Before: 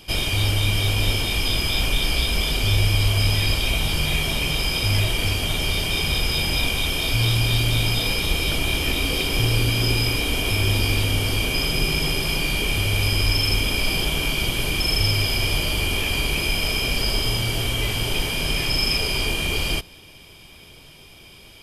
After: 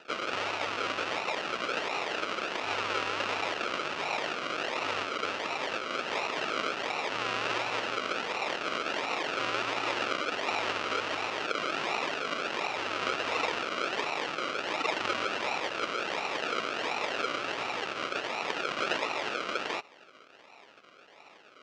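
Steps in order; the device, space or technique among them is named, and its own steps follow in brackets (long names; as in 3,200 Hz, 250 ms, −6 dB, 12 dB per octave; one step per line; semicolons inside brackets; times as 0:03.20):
circuit-bent sampling toy (sample-and-hold swept by an LFO 39×, swing 60% 1.4 Hz; loudspeaker in its box 580–5,700 Hz, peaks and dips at 760 Hz −3 dB, 1,300 Hz +7 dB, 2,700 Hz +9 dB)
level −4 dB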